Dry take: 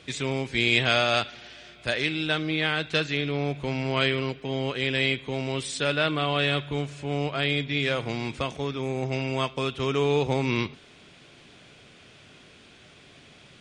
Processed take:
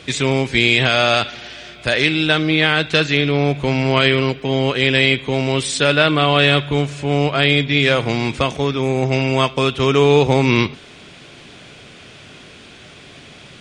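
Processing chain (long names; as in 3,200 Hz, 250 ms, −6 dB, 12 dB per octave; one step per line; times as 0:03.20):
boost into a limiter +12 dB
level −1 dB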